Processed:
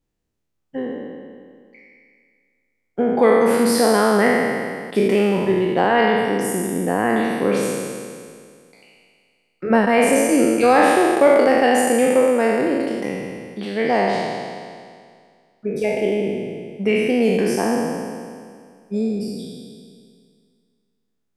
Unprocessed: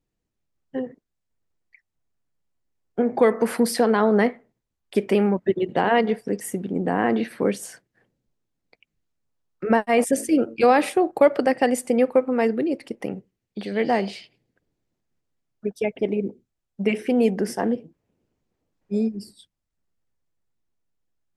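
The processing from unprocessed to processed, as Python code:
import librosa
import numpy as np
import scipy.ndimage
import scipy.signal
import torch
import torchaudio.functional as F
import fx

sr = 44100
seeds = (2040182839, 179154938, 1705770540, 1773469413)

y = fx.spec_trails(x, sr, decay_s=2.07)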